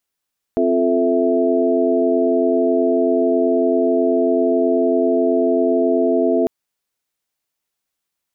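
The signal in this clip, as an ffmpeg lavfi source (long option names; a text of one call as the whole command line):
ffmpeg -f lavfi -i "aevalsrc='0.112*(sin(2*PI*261.63*t)+sin(2*PI*349.23*t)+sin(2*PI*440*t)+sin(2*PI*659.26*t))':duration=5.9:sample_rate=44100" out.wav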